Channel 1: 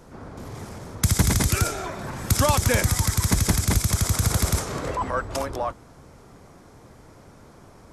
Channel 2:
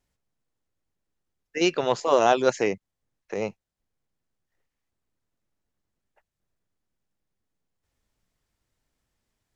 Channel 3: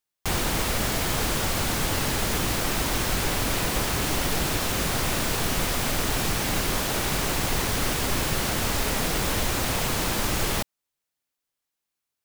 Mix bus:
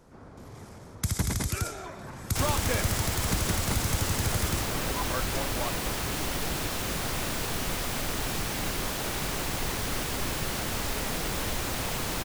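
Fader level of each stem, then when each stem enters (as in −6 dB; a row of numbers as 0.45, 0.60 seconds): −8.5 dB, muted, −5.5 dB; 0.00 s, muted, 2.10 s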